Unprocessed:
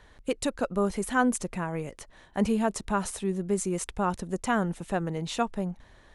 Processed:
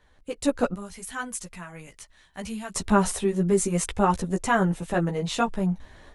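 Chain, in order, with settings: 0.74–2.75 s: amplifier tone stack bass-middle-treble 5-5-5; level rider gain up to 15 dB; chorus voices 6, 0.67 Hz, delay 14 ms, depth 3.9 ms; trim -4 dB

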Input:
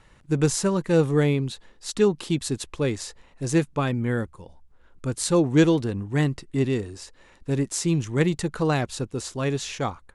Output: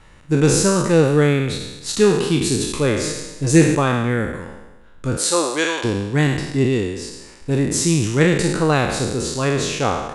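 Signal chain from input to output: spectral sustain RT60 1.08 s; 3.03–3.75 s: comb 6.5 ms, depth 68%; 5.16–5.83 s: high-pass 380 Hz -> 860 Hz 12 dB/octave; trim +4.5 dB

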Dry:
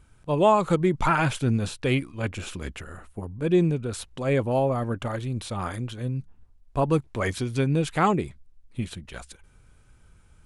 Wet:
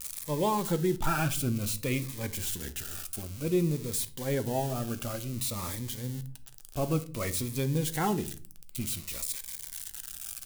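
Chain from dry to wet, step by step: zero-crossing glitches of -20.5 dBFS; on a send at -10.5 dB: reverberation RT60 0.40 s, pre-delay 4 ms; on the sum: Shepard-style phaser falling 0.55 Hz; trim -6 dB

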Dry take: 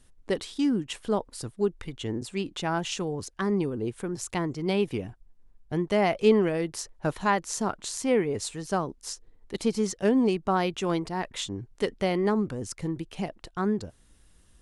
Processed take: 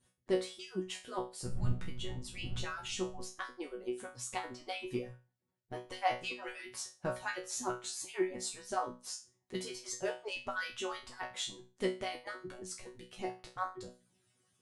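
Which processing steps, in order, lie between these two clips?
harmonic-percussive separation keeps percussive; 1.44–3.22 s: wind noise 90 Hz -33 dBFS; chord resonator B2 fifth, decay 0.31 s; trim +7.5 dB

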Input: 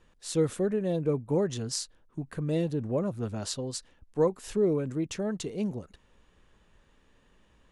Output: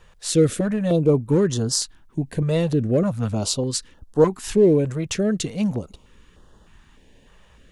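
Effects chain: in parallel at -7 dB: overload inside the chain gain 23.5 dB; on the sum: step-sequenced notch 3.3 Hz 280–2300 Hz; trim +8 dB

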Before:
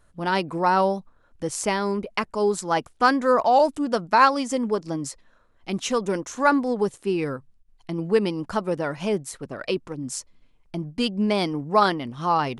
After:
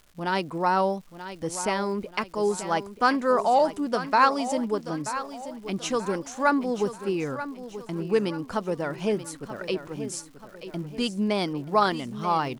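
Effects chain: crackle 290 per s -42 dBFS; on a send: feedback delay 933 ms, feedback 41%, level -12 dB; on the sum: trim -3 dB

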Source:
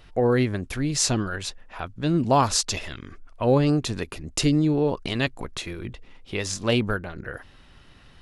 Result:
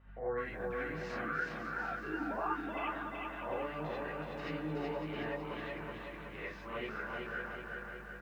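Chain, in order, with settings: 1.22–2.86 s: formants replaced by sine waves; low-pass 1.6 kHz 24 dB/octave; differentiator; peak limiter -40.5 dBFS, peak gain reduction 11.5 dB; flange 0.36 Hz, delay 7.3 ms, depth 6.9 ms, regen +52%; vibrato 1.2 Hz 11 cents; hum 50 Hz, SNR 12 dB; feedback delay 553 ms, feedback 28%, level -9 dB; gated-style reverb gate 110 ms rising, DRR -7.5 dB; bit-crushed delay 375 ms, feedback 55%, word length 13-bit, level -3 dB; trim +7.5 dB

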